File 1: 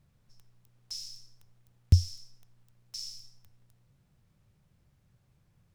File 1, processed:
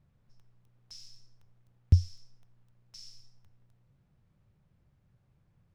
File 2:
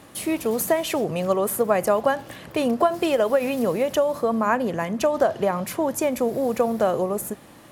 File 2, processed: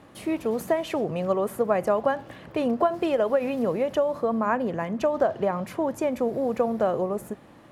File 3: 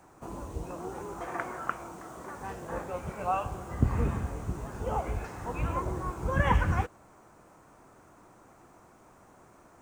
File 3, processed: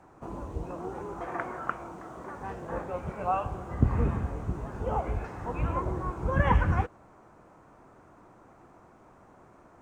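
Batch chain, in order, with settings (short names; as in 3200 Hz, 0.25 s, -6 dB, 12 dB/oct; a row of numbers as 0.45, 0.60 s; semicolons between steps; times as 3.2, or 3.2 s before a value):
LPF 2000 Hz 6 dB/oct; normalise peaks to -9 dBFS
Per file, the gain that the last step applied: -0.5, -2.5, +2.0 dB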